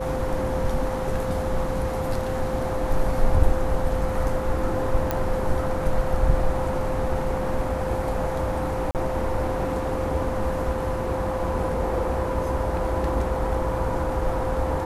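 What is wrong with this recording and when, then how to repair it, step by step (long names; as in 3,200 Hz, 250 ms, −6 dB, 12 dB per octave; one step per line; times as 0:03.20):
whistle 520 Hz −28 dBFS
0:05.11: click −10 dBFS
0:08.91–0:08.95: drop-out 38 ms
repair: click removal
notch filter 520 Hz, Q 30
repair the gap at 0:08.91, 38 ms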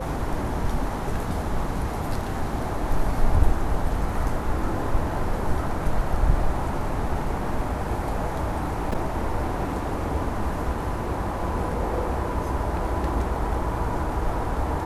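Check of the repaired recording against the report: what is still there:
none of them is left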